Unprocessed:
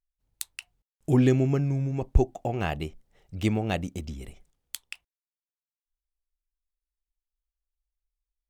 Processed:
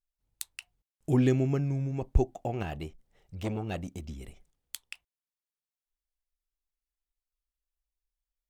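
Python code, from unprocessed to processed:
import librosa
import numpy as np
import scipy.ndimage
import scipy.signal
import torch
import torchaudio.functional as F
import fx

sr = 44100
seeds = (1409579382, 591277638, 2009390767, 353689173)

y = fx.transformer_sat(x, sr, knee_hz=610.0, at=(2.63, 4.09))
y = y * librosa.db_to_amplitude(-3.5)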